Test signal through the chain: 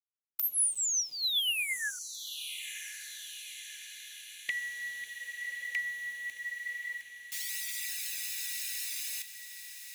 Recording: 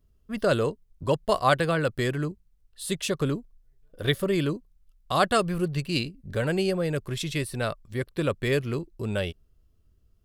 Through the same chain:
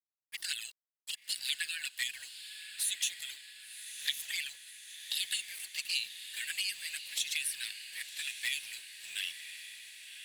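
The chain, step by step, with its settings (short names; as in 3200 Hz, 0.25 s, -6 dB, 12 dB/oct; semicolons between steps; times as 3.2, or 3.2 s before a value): steep high-pass 1700 Hz 96 dB/oct; expander -56 dBFS; high shelf 3800 Hz +11.5 dB; compressor 6:1, threshold -27 dBFS; phaser 0.26 Hz, delay 4.9 ms, feedback 32%; bit-crush 9-bit; envelope flanger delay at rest 9.5 ms, full sweep at -27.5 dBFS; diffused feedback echo 1.079 s, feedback 63%, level -10.5 dB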